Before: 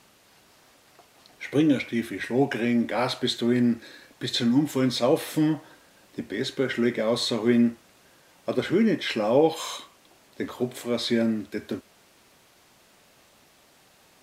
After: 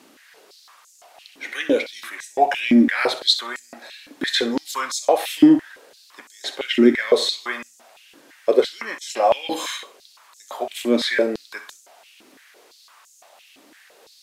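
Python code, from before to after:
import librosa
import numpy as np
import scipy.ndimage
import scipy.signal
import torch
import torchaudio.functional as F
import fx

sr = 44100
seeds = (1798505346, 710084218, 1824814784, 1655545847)

y = fx.room_flutter(x, sr, wall_m=10.9, rt60_s=0.27)
y = fx.filter_held_highpass(y, sr, hz=5.9, low_hz=280.0, high_hz=6800.0)
y = y * librosa.db_to_amplitude(3.5)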